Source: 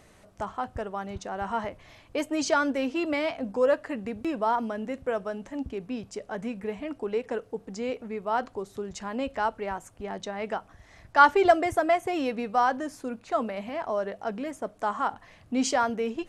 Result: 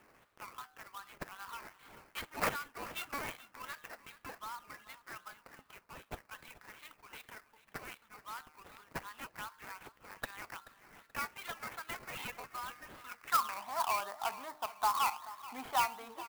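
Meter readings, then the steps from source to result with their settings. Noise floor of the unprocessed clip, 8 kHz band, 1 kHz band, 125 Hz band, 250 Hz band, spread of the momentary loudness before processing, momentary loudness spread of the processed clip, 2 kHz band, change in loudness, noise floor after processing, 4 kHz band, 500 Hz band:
-56 dBFS, -6.0 dB, -10.0 dB, -12.0 dB, -24.0 dB, 11 LU, 20 LU, -10.5 dB, -11.0 dB, -69 dBFS, -5.5 dB, -21.5 dB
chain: resonant low shelf 770 Hz -12 dB, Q 3; de-hum 152.4 Hz, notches 13; compressor 2.5:1, threshold -29 dBFS, peak gain reduction 14.5 dB; band-pass sweep 4800 Hz -> 770 Hz, 12.8–13.67; decimation with a swept rate 10×, swing 60% 2.6 Hz; soft clip -25.5 dBFS, distortion -21 dB; air absorption 79 m; feedback echo 0.431 s, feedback 31%, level -17 dB; clock jitter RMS 0.031 ms; gain +6.5 dB

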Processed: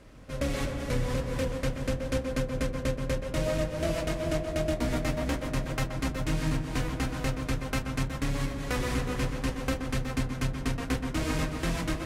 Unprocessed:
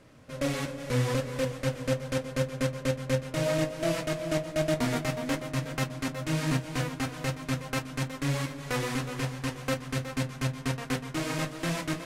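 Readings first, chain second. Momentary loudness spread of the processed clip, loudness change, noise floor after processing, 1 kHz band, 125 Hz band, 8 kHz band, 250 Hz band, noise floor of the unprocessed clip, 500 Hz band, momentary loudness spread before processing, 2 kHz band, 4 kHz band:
3 LU, 0.0 dB, -37 dBFS, -0.5 dB, -0.5 dB, -2.0 dB, 0.0 dB, -43 dBFS, -1.0 dB, 5 LU, -1.0 dB, -1.5 dB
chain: octaver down 2 oct, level +3 dB; compressor, threshold -27 dBFS, peak gain reduction 9 dB; on a send: tape echo 0.128 s, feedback 83%, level -7 dB, low-pass 2000 Hz; on the sum: gain +1.5 dB

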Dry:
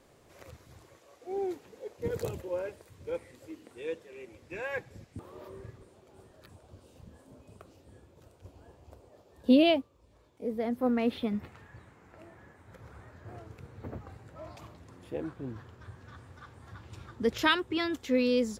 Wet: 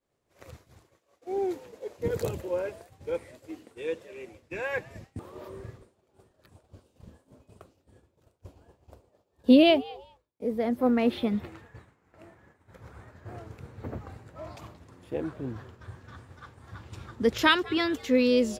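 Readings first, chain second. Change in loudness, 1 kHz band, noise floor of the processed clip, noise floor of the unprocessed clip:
+4.0 dB, +4.0 dB, -73 dBFS, -61 dBFS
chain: frequency-shifting echo 0.201 s, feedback 33%, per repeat +120 Hz, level -22 dB; expander -47 dBFS; gain +4 dB

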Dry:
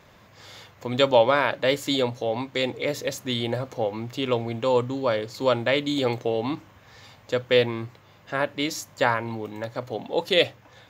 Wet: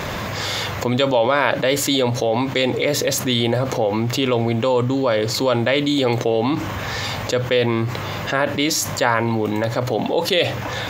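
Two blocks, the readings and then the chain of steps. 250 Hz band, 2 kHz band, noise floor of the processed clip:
+8.0 dB, +6.0 dB, -27 dBFS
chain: fast leveller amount 70%; gain -1 dB

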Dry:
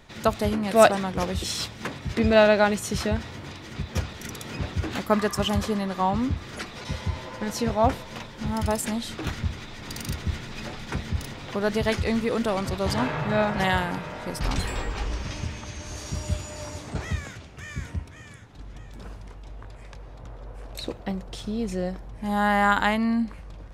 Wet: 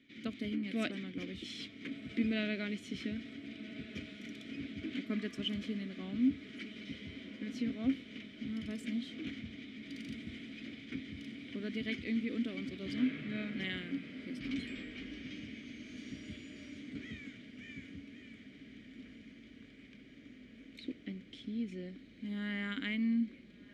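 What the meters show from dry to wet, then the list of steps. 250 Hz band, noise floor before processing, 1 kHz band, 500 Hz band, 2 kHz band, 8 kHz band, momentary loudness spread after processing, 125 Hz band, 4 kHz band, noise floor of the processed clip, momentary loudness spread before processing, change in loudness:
-8.0 dB, -43 dBFS, -31.5 dB, -22.0 dB, -14.0 dB, under -20 dB, 18 LU, -18.5 dB, -11.5 dB, -56 dBFS, 22 LU, -13.5 dB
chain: vowel filter i; diffused feedback echo 1.439 s, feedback 77%, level -15 dB; gain +1 dB

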